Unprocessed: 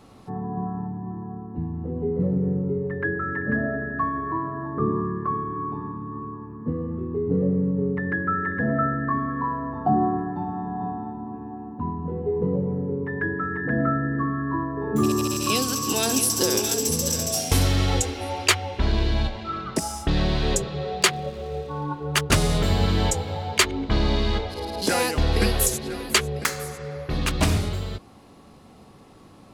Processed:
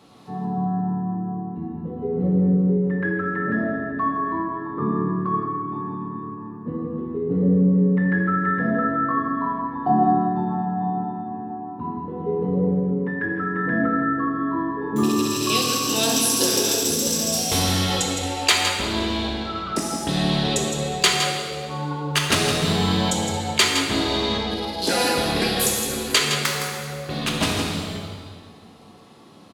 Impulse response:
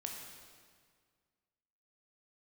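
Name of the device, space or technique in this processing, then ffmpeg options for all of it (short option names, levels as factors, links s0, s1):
PA in a hall: -filter_complex "[0:a]highpass=130,equalizer=f=3700:t=o:w=0.72:g=6,aecho=1:1:163:0.398[s0];[1:a]atrim=start_sample=2205[s1];[s0][s1]afir=irnorm=-1:irlink=0,volume=1.33"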